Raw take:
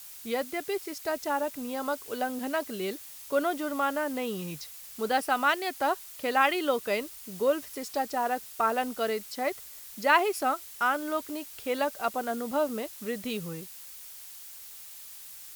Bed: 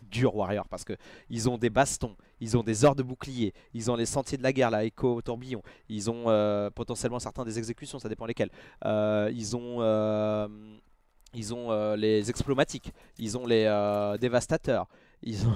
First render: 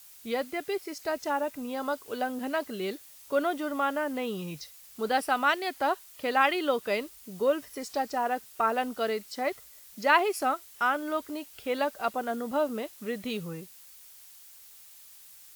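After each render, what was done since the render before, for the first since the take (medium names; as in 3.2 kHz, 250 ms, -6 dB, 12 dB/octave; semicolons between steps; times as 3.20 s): noise print and reduce 6 dB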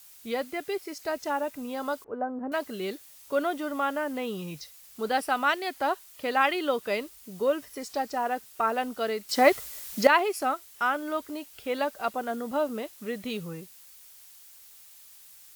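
2.04–2.52 s: low-pass 1.3 kHz 24 dB/octave; 9.29–10.07 s: gain +11 dB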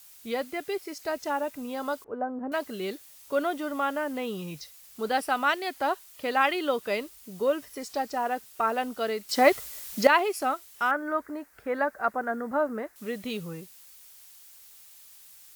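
10.91–12.96 s: resonant high shelf 2.3 kHz -10 dB, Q 3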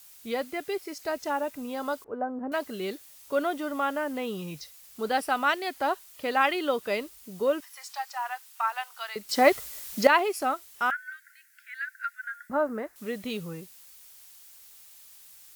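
7.60–9.16 s: elliptic high-pass 840 Hz, stop band 80 dB; 10.90–12.50 s: Chebyshev high-pass 1.4 kHz, order 10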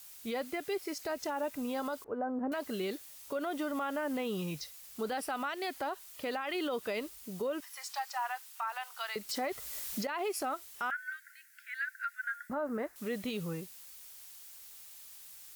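compression 3:1, threshold -27 dBFS, peak gain reduction 11.5 dB; peak limiter -27 dBFS, peak gain reduction 11.5 dB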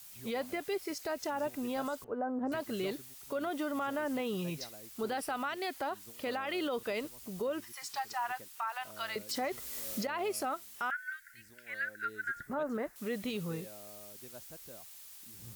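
add bed -26.5 dB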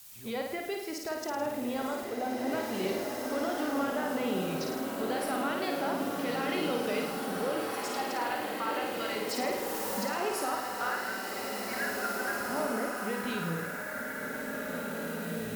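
flutter echo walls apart 9.2 m, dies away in 0.78 s; swelling reverb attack 2400 ms, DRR 0.5 dB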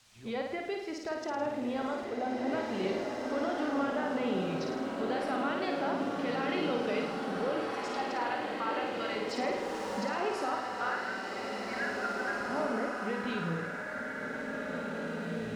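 distance through air 110 m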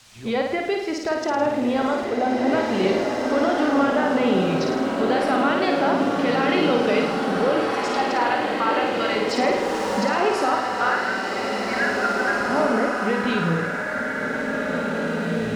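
trim +12 dB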